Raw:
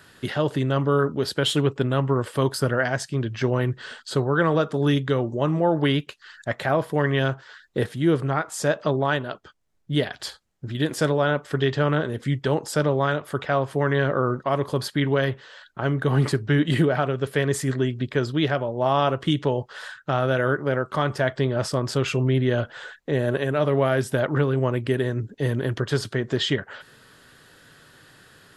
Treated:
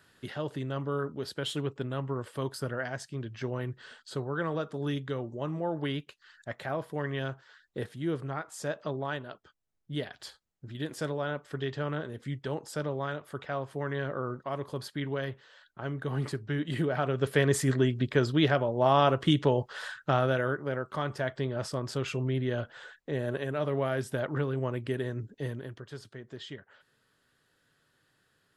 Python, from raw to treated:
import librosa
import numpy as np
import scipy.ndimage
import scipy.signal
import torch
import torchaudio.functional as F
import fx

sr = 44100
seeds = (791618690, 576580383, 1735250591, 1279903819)

y = fx.gain(x, sr, db=fx.line((16.72, -11.5), (17.26, -2.0), (20.11, -2.0), (20.56, -9.0), (25.38, -9.0), (25.81, -19.5)))